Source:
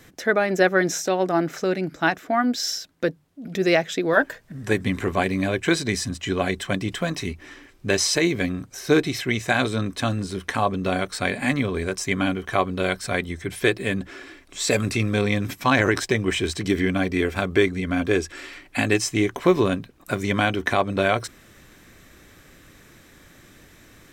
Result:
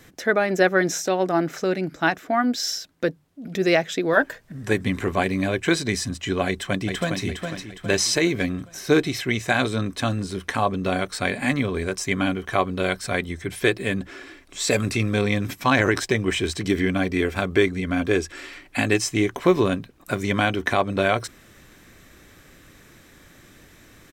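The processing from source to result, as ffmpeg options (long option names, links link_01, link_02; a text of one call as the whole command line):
ffmpeg -i in.wav -filter_complex "[0:a]asplit=2[link_01][link_02];[link_02]afade=type=in:start_time=6.46:duration=0.01,afade=type=out:start_time=7.22:duration=0.01,aecho=0:1:410|820|1230|1640|2050:0.530884|0.238898|0.107504|0.0483768|0.0217696[link_03];[link_01][link_03]amix=inputs=2:normalize=0" out.wav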